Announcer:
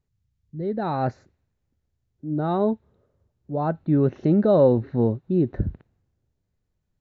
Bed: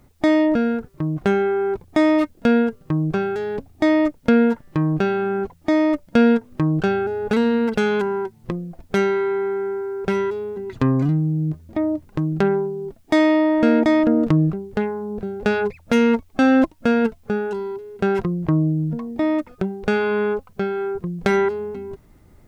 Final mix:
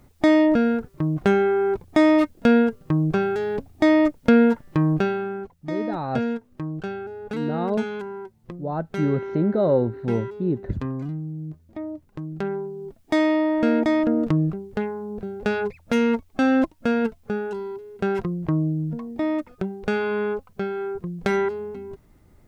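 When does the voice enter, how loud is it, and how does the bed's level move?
5.10 s, −3.0 dB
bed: 0:04.93 0 dB
0:05.51 −11 dB
0:12.23 −11 dB
0:13.05 −4 dB

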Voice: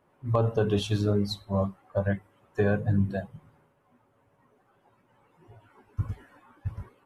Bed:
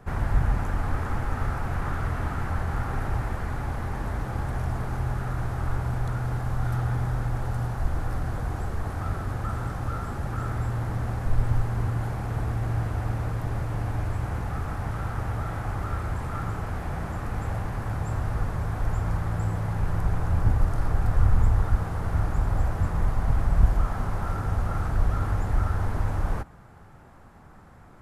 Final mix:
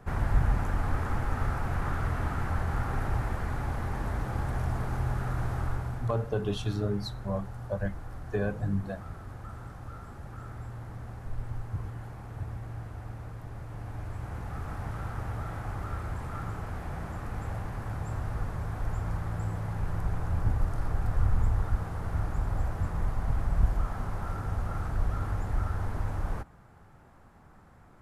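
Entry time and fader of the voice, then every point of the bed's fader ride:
5.75 s, −5.5 dB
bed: 0:05.57 −2 dB
0:06.32 −12.5 dB
0:13.53 −12.5 dB
0:14.76 −5.5 dB

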